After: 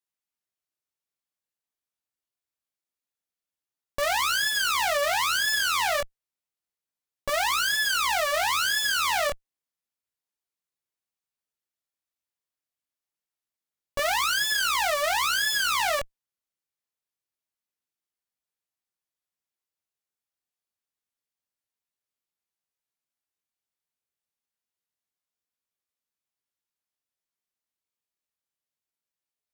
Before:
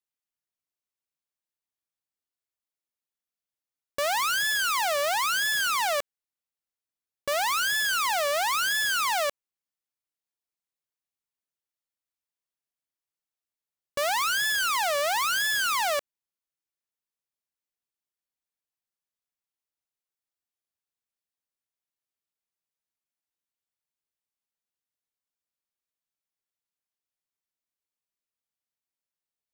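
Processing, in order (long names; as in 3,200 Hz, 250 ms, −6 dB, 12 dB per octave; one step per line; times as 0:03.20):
chorus effect 0.27 Hz, delay 16.5 ms, depth 7.4 ms
harmonic generator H 8 −11 dB, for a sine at −21 dBFS
level +3 dB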